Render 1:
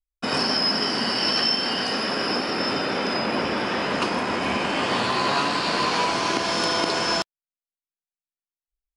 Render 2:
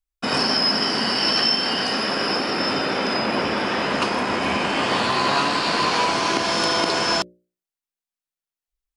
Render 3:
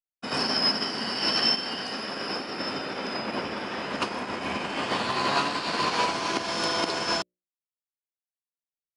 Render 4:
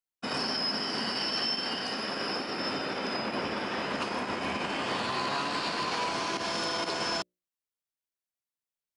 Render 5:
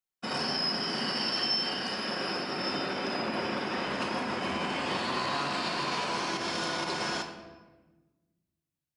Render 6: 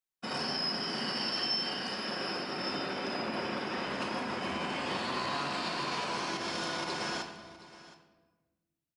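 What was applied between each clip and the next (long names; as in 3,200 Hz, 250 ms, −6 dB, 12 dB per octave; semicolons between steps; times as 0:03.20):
mains-hum notches 60/120/180/240/300/360/420/480/540/600 Hz; level +2.5 dB
expander for the loud parts 2.5 to 1, over −39 dBFS; level −2 dB
brickwall limiter −22 dBFS, peak gain reduction 11 dB
rectangular room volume 820 cubic metres, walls mixed, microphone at 0.98 metres; level −1.5 dB
single-tap delay 720 ms −18 dB; level −3 dB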